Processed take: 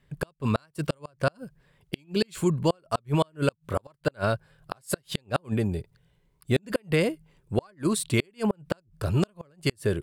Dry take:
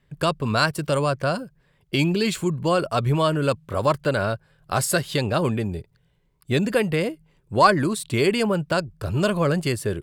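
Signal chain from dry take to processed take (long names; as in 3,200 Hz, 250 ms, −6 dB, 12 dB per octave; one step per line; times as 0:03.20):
0:05.46–0:06.63: dynamic equaliser 2,900 Hz, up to −4 dB, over −41 dBFS, Q 0.72
gate with flip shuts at −12 dBFS, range −38 dB
parametric band 9,500 Hz +2.5 dB 0.39 octaves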